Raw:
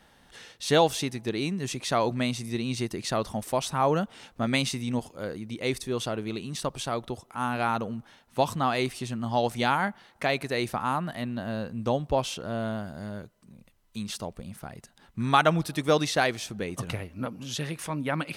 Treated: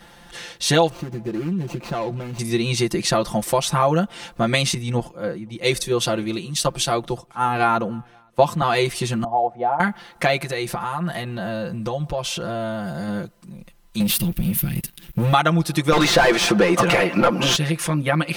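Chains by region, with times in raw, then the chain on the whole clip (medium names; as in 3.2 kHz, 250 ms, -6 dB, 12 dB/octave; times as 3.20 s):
0.89–2.39 s: median filter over 25 samples + treble shelf 5.6 kHz -4 dB + compression 10:1, threshold -33 dBFS
4.74–8.62 s: delay 521 ms -23.5 dB + three bands expanded up and down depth 100%
9.24–9.80 s: band-pass filter 700 Hz, Q 4.7 + tilt EQ -3.5 dB/octave
10.37–13.08 s: peaking EQ 270 Hz -8 dB 0.39 oct + compression 5:1, threshold -34 dBFS
14.00–15.33 s: FFT filter 120 Hz 0 dB, 340 Hz -6 dB, 560 Hz -27 dB, 1.2 kHz -20 dB, 2.7 kHz -1 dB, 6.9 kHz -12 dB, 14 kHz +15 dB + waveshaping leveller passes 3
15.92–17.56 s: high-pass 220 Hz 6 dB/octave + overdrive pedal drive 34 dB, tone 1.4 kHz, clips at -8 dBFS
whole clip: comb 5.8 ms, depth 97%; compression 2.5:1, threshold -26 dBFS; trim +9 dB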